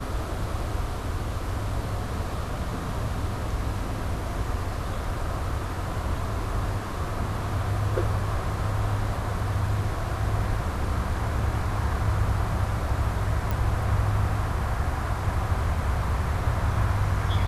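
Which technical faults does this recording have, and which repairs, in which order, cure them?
0:13.51: click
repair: click removal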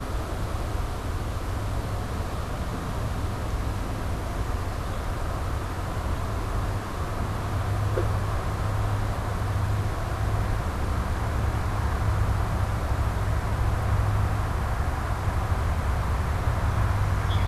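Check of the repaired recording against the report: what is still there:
none of them is left

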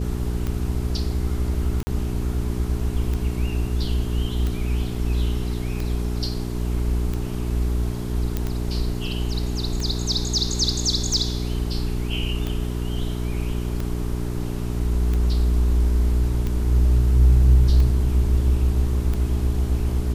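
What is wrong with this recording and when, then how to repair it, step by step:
mains hum 60 Hz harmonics 7 −26 dBFS
scratch tick 45 rpm −15 dBFS
0:01.83–0:01.87: drop-out 40 ms
0:08.37: click −11 dBFS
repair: click removal
hum removal 60 Hz, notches 7
repair the gap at 0:01.83, 40 ms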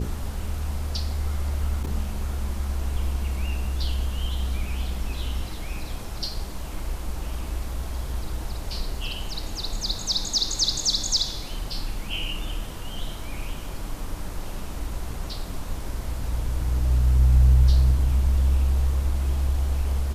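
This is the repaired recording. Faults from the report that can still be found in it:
none of them is left

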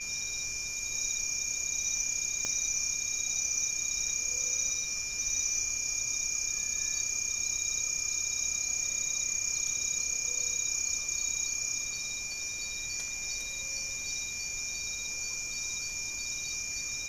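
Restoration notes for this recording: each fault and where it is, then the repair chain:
whistle 2,400 Hz −39 dBFS
0:02.45: click −19 dBFS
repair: click removal
notch filter 2,400 Hz, Q 30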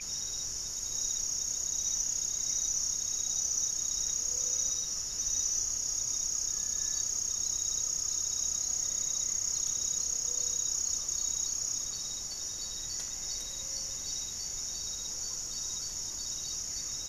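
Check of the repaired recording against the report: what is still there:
0:02.45: click

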